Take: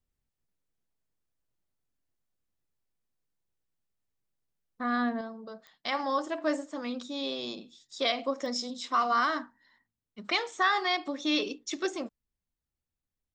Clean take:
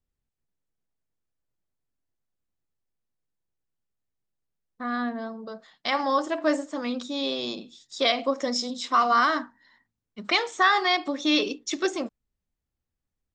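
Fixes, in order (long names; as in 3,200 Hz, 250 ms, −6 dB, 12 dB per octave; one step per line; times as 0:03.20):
click removal
level 0 dB, from 0:05.21 +5.5 dB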